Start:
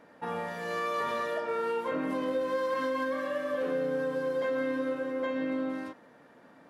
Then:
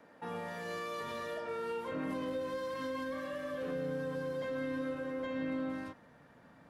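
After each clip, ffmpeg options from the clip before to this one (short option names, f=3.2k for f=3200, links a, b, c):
-filter_complex "[0:a]asubboost=boost=6:cutoff=130,acrossover=split=290|420|2600[a][b][c][d];[c]alimiter=level_in=10dB:limit=-24dB:level=0:latency=1,volume=-10dB[e];[a][b][e][d]amix=inputs=4:normalize=0,volume=-3dB"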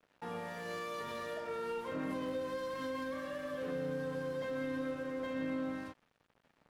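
-af "aeval=exprs='sgn(val(0))*max(abs(val(0))-0.00158,0)':c=same"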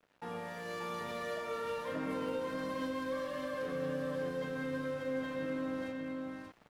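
-af "aecho=1:1:584:0.668,areverse,acompressor=mode=upward:threshold=-53dB:ratio=2.5,areverse"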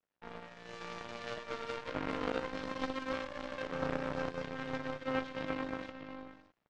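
-af "aeval=exprs='0.0501*(cos(1*acos(clip(val(0)/0.0501,-1,1)))-cos(1*PI/2))+0.0158*(cos(3*acos(clip(val(0)/0.0501,-1,1)))-cos(3*PI/2))+0.00112*(cos(6*acos(clip(val(0)/0.0501,-1,1)))-cos(6*PI/2))':c=same,lowpass=f=7k:w=0.5412,lowpass=f=7k:w=1.3066,volume=7dB"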